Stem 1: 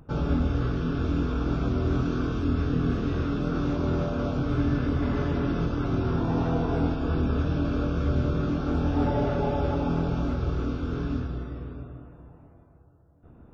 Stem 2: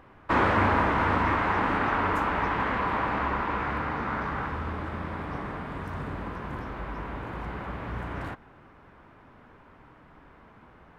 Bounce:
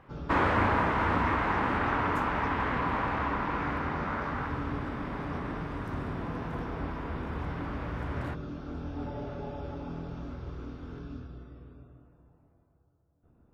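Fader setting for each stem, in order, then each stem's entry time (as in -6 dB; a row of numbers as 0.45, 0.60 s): -12.5, -3.0 dB; 0.00, 0.00 s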